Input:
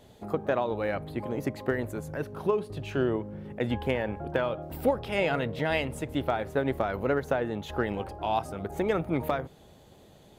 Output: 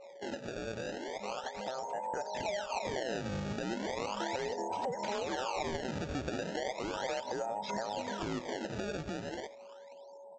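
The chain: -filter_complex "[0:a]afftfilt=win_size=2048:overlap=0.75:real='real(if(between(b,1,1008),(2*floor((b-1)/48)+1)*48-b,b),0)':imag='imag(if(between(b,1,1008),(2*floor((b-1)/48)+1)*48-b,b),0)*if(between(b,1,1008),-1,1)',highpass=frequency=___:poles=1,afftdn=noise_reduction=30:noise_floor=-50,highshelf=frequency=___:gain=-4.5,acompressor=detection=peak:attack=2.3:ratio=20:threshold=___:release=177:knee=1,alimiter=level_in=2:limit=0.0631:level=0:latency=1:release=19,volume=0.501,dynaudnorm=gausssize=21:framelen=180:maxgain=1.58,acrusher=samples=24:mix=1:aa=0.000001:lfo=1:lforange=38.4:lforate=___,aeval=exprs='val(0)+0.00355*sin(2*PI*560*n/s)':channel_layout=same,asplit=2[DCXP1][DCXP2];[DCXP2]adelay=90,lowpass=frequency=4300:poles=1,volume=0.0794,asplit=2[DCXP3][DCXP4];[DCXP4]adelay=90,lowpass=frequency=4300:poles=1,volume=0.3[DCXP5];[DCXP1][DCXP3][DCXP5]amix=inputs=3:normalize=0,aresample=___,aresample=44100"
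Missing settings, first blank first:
93, 2000, 0.02, 0.36, 16000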